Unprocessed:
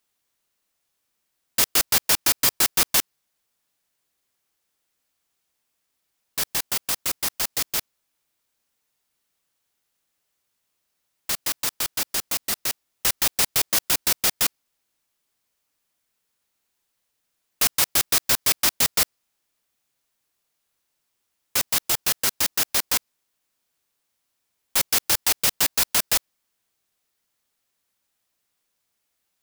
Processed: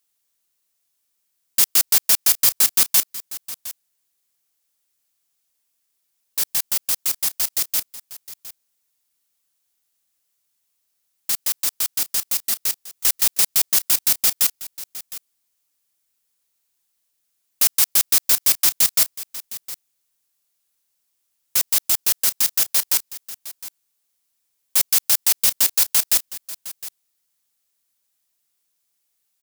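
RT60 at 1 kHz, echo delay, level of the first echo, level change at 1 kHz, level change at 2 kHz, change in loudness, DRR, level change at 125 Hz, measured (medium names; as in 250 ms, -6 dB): no reverb, 711 ms, -16.0 dB, -5.0 dB, -3.5 dB, +4.0 dB, no reverb, no reading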